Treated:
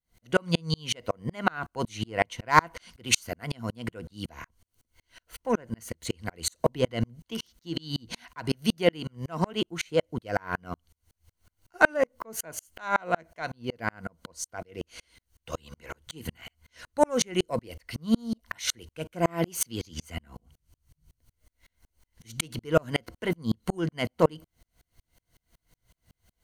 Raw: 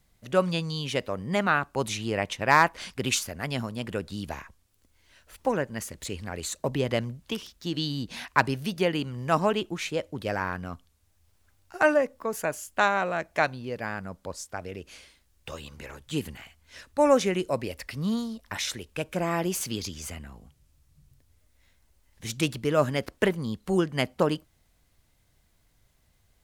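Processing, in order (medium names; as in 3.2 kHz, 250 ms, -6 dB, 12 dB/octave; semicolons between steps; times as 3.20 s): rippled EQ curve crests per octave 1.9, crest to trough 7 dB; in parallel at -6 dB: saturation -20.5 dBFS, distortion -10 dB; on the sum: sawtooth tremolo in dB swelling 5.4 Hz, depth 39 dB; trim +5 dB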